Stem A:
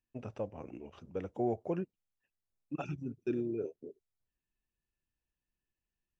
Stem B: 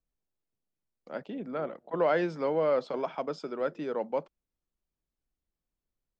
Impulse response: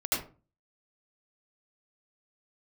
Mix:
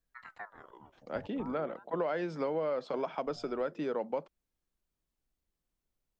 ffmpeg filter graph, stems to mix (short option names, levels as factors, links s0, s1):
-filter_complex "[0:a]aeval=exprs='val(0)*sin(2*PI*1000*n/s+1000*0.65/0.44*sin(2*PI*0.44*n/s))':c=same,volume=0.562,afade=t=out:st=1.09:d=0.64:silence=0.223872[s0];[1:a]volume=1.26[s1];[s0][s1]amix=inputs=2:normalize=0,acompressor=threshold=0.0316:ratio=6"